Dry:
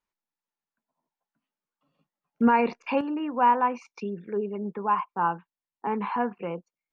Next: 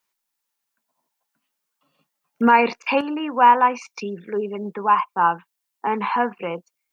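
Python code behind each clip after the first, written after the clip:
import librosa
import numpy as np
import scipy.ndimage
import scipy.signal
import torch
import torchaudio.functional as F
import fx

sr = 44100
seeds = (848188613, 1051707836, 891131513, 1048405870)

y = fx.tilt_eq(x, sr, slope=2.5)
y = y * 10.0 ** (7.5 / 20.0)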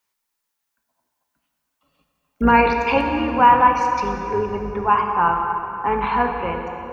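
y = fx.octave_divider(x, sr, octaves=2, level_db=-5.0)
y = fx.rev_plate(y, sr, seeds[0], rt60_s=3.4, hf_ratio=0.65, predelay_ms=0, drr_db=2.5)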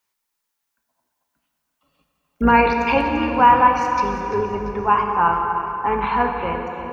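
y = fx.echo_feedback(x, sr, ms=342, feedback_pct=47, wet_db=-13)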